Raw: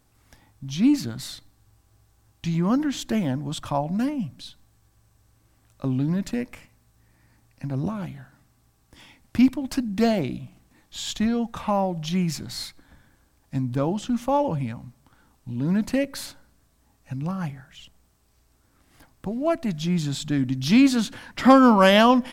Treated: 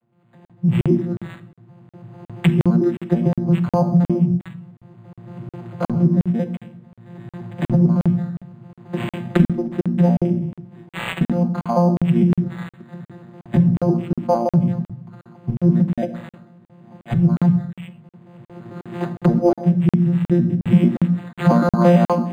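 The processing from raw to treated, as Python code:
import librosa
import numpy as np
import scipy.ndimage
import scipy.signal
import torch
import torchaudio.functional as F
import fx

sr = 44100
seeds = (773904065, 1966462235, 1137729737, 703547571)

y = fx.vocoder_arp(x, sr, chord='bare fifth', root=46, every_ms=112)
y = fx.recorder_agc(y, sr, target_db=-12.0, rise_db_per_s=22.0, max_gain_db=30)
y = fx.hum_notches(y, sr, base_hz=60, count=3)
y = y + 0.93 * np.pad(y, (int(5.8 * sr / 1000.0), 0))[:len(y)]
y = fx.room_shoebox(y, sr, seeds[0], volume_m3=1900.0, walls='furnished', distance_m=1.0)
y = fx.buffer_crackle(y, sr, first_s=0.45, period_s=0.36, block=2048, kind='zero')
y = np.interp(np.arange(len(y)), np.arange(len(y))[::8], y[::8])
y = y * 10.0 ** (-1.0 / 20.0)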